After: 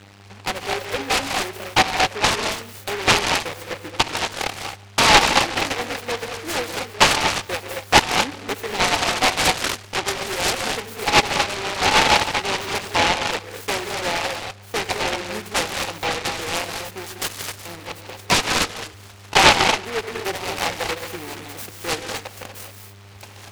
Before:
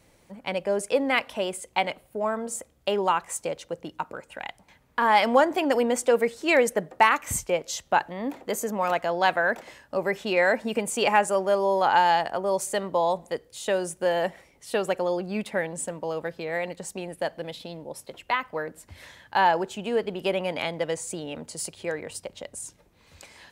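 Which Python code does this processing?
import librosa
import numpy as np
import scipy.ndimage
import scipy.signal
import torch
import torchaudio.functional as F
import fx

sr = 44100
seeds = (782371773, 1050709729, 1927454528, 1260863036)

p1 = fx.freq_invert(x, sr, carrier_hz=3400, at=(17.06, 17.66))
p2 = p1 + 0.49 * np.pad(p1, (int(2.5 * sr / 1000.0), 0))[:len(p1)]
p3 = fx.rider(p2, sr, range_db=5, speed_s=0.5)
p4 = fx.dereverb_blind(p3, sr, rt60_s=1.3)
p5 = fx.dmg_buzz(p4, sr, base_hz=100.0, harmonics=13, level_db=-42.0, tilt_db=-7, odd_only=False)
p6 = scipy.signal.sosfilt(scipy.signal.butter(4, 71.0, 'highpass', fs=sr, output='sos'), p5)
p7 = fx.band_shelf(p6, sr, hz=1100.0, db=12.5, octaves=1.3)
p8 = p7 + fx.echo_feedback(p7, sr, ms=145, feedback_pct=41, wet_db=-22.5, dry=0)
p9 = fx.rev_gated(p8, sr, seeds[0], gate_ms=270, shape='rising', drr_db=3.5)
p10 = fx.env_lowpass_down(p9, sr, base_hz=1900.0, full_db=-10.5)
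p11 = fx.noise_mod_delay(p10, sr, seeds[1], noise_hz=1500.0, depth_ms=0.23)
y = p11 * librosa.db_to_amplitude(-5.0)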